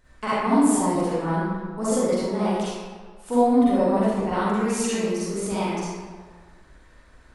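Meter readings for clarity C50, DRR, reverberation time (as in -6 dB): -7.0 dB, -11.0 dB, 1.6 s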